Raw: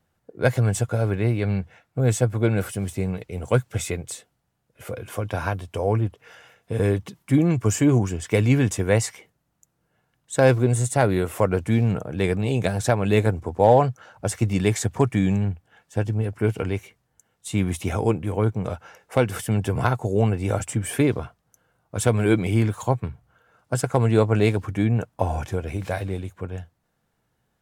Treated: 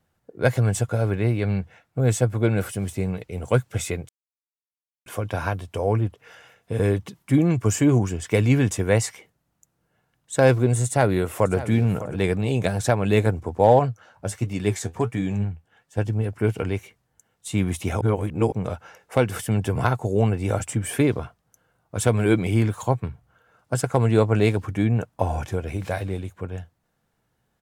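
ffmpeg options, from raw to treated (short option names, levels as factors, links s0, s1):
-filter_complex "[0:a]asplit=2[s0][s1];[s1]afade=t=in:st=10.85:d=0.01,afade=t=out:st=11.56:d=0.01,aecho=0:1:600|1200:0.188365|0.0282547[s2];[s0][s2]amix=inputs=2:normalize=0,asettb=1/sr,asplit=3[s3][s4][s5];[s3]atrim=end=13.794[s6];[s4]atrim=start=13.79:end=15.98,asetpts=PTS-STARTPTS,afade=t=in:d=0.004:c=qsin,afade=t=out:st=2.186:d=0.004:c=qsin,flanger=delay=6.2:depth=6.9:regen=52:speed=1.4:shape=triangular[s7];[s5]atrim=start=15.976[s8];[s6][s7]acrossfade=d=0.004:c1=hsin:c2=qsin[s9];[s9][s8]acrossfade=d=0.004:c1=qsin:c2=hsin,asplit=5[s10][s11][s12][s13][s14];[s10]atrim=end=4.09,asetpts=PTS-STARTPTS,afade=t=out:st=4.086:d=0.004:c=hsin[s15];[s11]atrim=start=4.09:end=5.06,asetpts=PTS-STARTPTS,volume=0[s16];[s12]atrim=start=5.06:end=18.012,asetpts=PTS-STARTPTS,afade=t=in:d=0.004:c=hsin[s17];[s13]atrim=start=18.008:end=18.522,asetpts=PTS-STARTPTS,areverse[s18];[s14]atrim=start=18.518[s19];[s15][s16][s17]concat=n=3:v=0:a=1[s20];[s20][s18]acrossfade=d=0.004:c1=hsin:c2=hsin[s21];[s21][s19]acrossfade=d=0.004:c1=hsin:c2=hsin"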